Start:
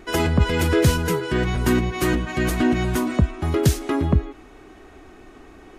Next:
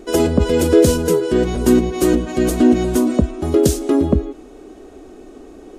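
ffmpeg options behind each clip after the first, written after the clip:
-af "equalizer=f=125:t=o:w=1:g=-8,equalizer=f=250:t=o:w=1:g=6,equalizer=f=500:t=o:w=1:g=8,equalizer=f=1k:t=o:w=1:g=-4,equalizer=f=2k:t=o:w=1:g=-8,equalizer=f=8k:t=o:w=1:g=5,volume=2dB"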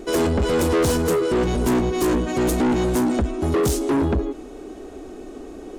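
-af "asoftclip=type=tanh:threshold=-19dB,volume=2.5dB"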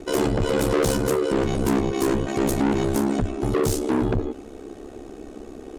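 -af "aeval=exprs='val(0)*sin(2*PI*34*n/s)':c=same,volume=1dB"

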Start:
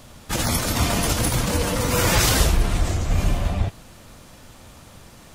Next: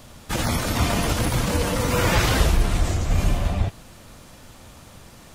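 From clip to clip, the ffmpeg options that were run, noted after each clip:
-filter_complex "[0:a]acrossover=split=3700[a][b];[b]acompressor=threshold=-30dB:ratio=4:attack=1:release=60[c];[a][c]amix=inputs=2:normalize=0"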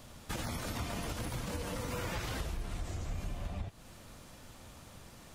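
-af "acompressor=threshold=-28dB:ratio=5,volume=-7.5dB"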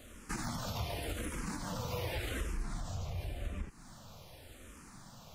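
-filter_complex "[0:a]asplit=2[a][b];[b]afreqshift=-0.88[c];[a][c]amix=inputs=2:normalize=1,volume=2.5dB"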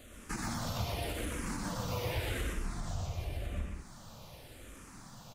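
-af "aecho=1:1:122.4|180.8:0.708|0.316"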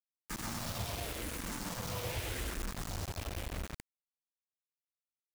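-af "acrusher=bits=5:mix=0:aa=0.000001,volume=-4dB"

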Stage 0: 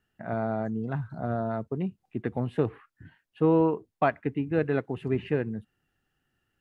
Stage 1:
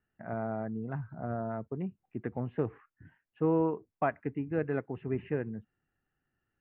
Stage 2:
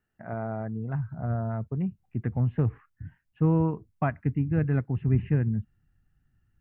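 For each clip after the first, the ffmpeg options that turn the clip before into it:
-af "lowpass=f=2.4k:w=0.5412,lowpass=f=2.4k:w=1.3066,volume=-5.5dB"
-af "asubboost=boost=10.5:cutoff=140,volume=2dB"

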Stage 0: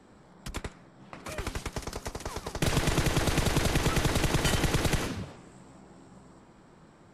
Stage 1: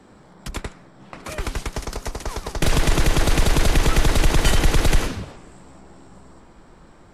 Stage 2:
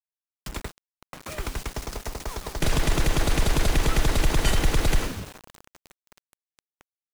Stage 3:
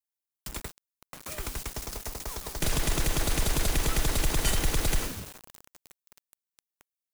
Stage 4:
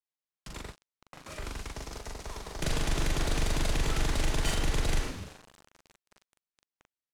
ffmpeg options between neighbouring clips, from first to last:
-af "asubboost=boost=4.5:cutoff=57,volume=6.5dB"
-af "acrusher=bits=5:mix=0:aa=0.000001,volume=-4.5dB"
-af "crystalizer=i=1.5:c=0,volume=-5.5dB"
-filter_complex "[0:a]adynamicsmooth=sensitivity=3:basefreq=5.9k,asplit=2[a][b];[b]adelay=41,volume=-2dB[c];[a][c]amix=inputs=2:normalize=0,volume=-3.5dB"

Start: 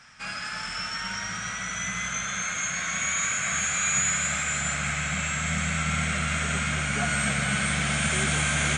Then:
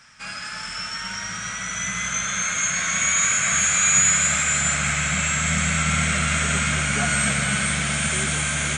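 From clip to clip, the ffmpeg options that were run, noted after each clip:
-af "highshelf=f=6.9k:g=7,bandreject=f=750:w=15,dynaudnorm=f=560:g=7:m=5dB"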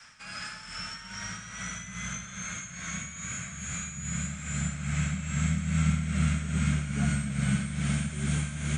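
-filter_complex "[0:a]acrossover=split=230[a][b];[b]acompressor=threshold=-34dB:ratio=10[c];[a][c]amix=inputs=2:normalize=0,tremolo=f=2.4:d=0.61,adynamicequalizer=threshold=0.00891:dfrequency=220:dqfactor=0.9:tfrequency=220:tqfactor=0.9:attack=5:release=100:ratio=0.375:range=2.5:mode=boostabove:tftype=bell"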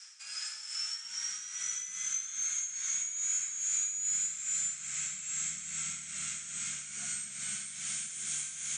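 -af "bandpass=f=6.8k:t=q:w=1.8:csg=0,volume=7.5dB"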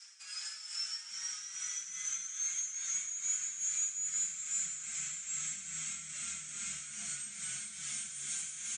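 -filter_complex "[0:a]aecho=1:1:528:0.251,asplit=2[a][b];[b]adelay=5.1,afreqshift=-2.9[c];[a][c]amix=inputs=2:normalize=1"

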